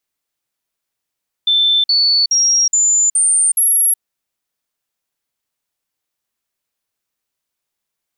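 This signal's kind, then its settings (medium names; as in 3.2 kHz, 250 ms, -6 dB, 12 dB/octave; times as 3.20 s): stepped sine 3.54 kHz up, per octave 3, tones 6, 0.37 s, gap 0.05 s -10 dBFS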